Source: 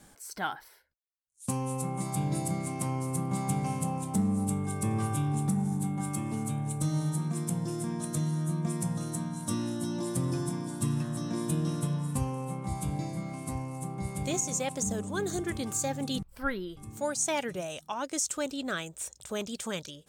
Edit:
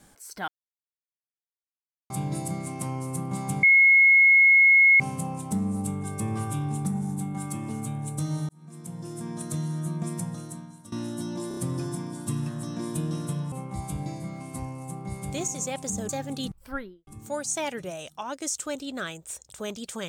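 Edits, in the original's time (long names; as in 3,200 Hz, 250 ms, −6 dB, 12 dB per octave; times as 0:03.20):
0:00.48–0:02.10: silence
0:03.63: insert tone 2,170 Hz −13 dBFS 1.37 s
0:07.12–0:08.05: fade in
0:08.77–0:09.55: fade out, to −19 dB
0:10.11: stutter 0.03 s, 4 plays
0:12.06–0:12.45: remove
0:15.02–0:15.80: remove
0:16.36–0:16.78: fade out and dull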